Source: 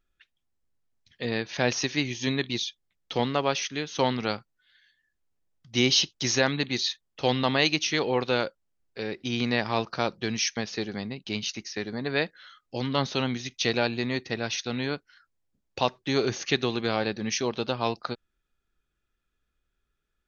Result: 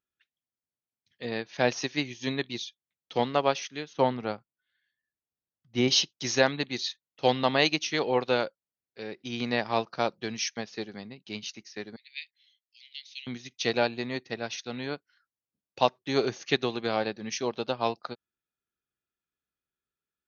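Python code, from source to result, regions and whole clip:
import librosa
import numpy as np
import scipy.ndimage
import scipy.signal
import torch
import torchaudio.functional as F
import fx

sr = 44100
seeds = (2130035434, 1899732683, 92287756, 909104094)

y = fx.chain(x, sr, fx.lowpass(hz=1600.0, slope=6),
    fx.low_shelf(hz=75.0, db=8.5), at=(3.93, 5.88))
y = fx.chain(y, sr, fx.steep_highpass(hz=2100.0, slope=72),
    fx.high_shelf(hz=5000.0, db=-4.0), at=(11.96, 13.27))
y = scipy.signal.sosfilt(scipy.signal.butter(2, 110.0, 'highpass', fs=sr, output='sos'), y)
y = fx.dynamic_eq(y, sr, hz=680.0, q=1.2, threshold_db=-36.0, ratio=4.0, max_db=4)
y = fx.upward_expand(y, sr, threshold_db=-40.0, expansion=1.5)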